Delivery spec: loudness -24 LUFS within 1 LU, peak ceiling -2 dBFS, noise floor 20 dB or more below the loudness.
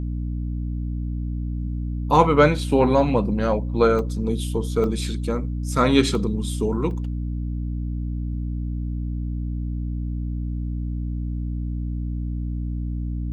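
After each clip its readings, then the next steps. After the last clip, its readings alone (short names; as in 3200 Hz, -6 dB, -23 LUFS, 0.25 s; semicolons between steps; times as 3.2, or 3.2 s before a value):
dropouts 4; longest dropout 1.6 ms; hum 60 Hz; harmonics up to 300 Hz; hum level -24 dBFS; loudness -24.0 LUFS; peak -1.5 dBFS; loudness target -24.0 LUFS
-> interpolate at 3.99/4.84/6.15/6.91, 1.6 ms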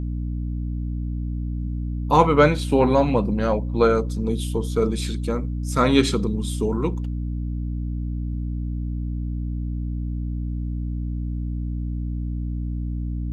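dropouts 0; hum 60 Hz; harmonics up to 300 Hz; hum level -24 dBFS
-> notches 60/120/180/240/300 Hz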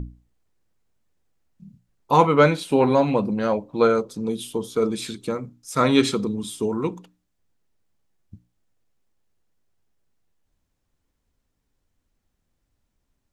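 hum none; loudness -22.0 LUFS; peak -2.0 dBFS; loudness target -24.0 LUFS
-> gain -2 dB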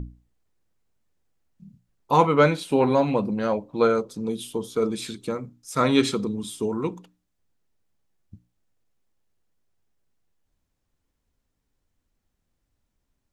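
loudness -24.0 LUFS; peak -4.0 dBFS; noise floor -77 dBFS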